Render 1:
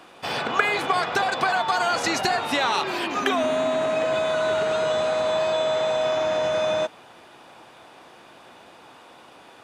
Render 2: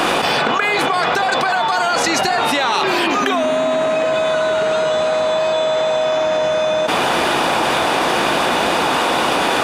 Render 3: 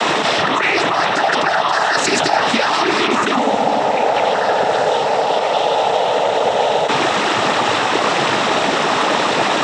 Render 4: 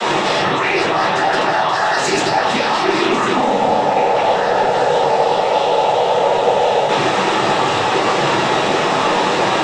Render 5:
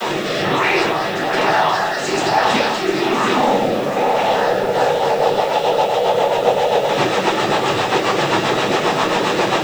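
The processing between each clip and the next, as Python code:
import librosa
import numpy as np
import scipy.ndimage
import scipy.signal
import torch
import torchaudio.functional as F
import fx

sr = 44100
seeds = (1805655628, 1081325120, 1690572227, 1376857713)

y1 = fx.peak_eq(x, sr, hz=110.0, db=-14.0, octaves=0.21)
y1 = fx.env_flatten(y1, sr, amount_pct=100)
y2 = fx.noise_vocoder(y1, sr, seeds[0], bands=12)
y2 = F.gain(torch.from_numpy(y2), 1.5).numpy()
y3 = fx.rider(y2, sr, range_db=10, speed_s=0.5)
y3 = 10.0 ** (-4.0 / 20.0) * np.tanh(y3 / 10.0 ** (-4.0 / 20.0))
y3 = fx.room_shoebox(y3, sr, seeds[1], volume_m3=38.0, walls='mixed', distance_m=1.1)
y3 = F.gain(torch.from_numpy(y3), -6.5).numpy()
y4 = fx.rotary_switch(y3, sr, hz=1.1, then_hz=7.5, switch_at_s=4.48)
y4 = y4 + 10.0 ** (-10.0 / 20.0) * np.pad(y4, (int(696 * sr / 1000.0), 0))[:len(y4)]
y4 = fx.quant_dither(y4, sr, seeds[2], bits=8, dither='triangular')
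y4 = F.gain(torch.from_numpy(y4), 1.0).numpy()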